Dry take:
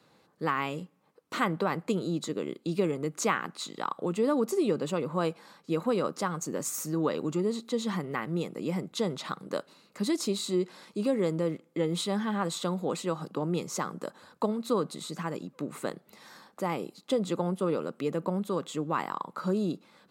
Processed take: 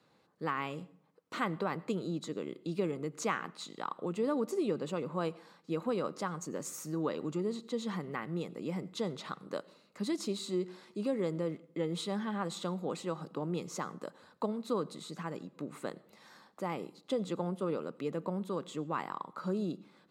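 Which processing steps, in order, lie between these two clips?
treble shelf 9.1 kHz -8 dB; on a send: reverberation RT60 0.60 s, pre-delay 81 ms, DRR 22 dB; on the sum: trim -5.5 dB

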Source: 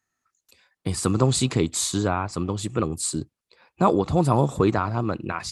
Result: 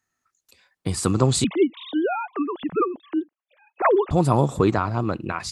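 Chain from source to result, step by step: 1.44–4.11 s: formants replaced by sine waves; trim +1 dB

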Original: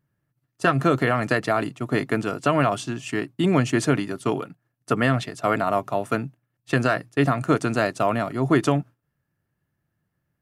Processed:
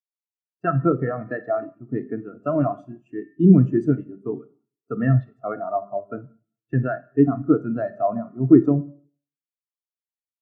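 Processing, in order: Schroeder reverb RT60 1.1 s, combs from 31 ms, DRR 5.5 dB; spectral contrast expander 2.5:1; trim +3.5 dB

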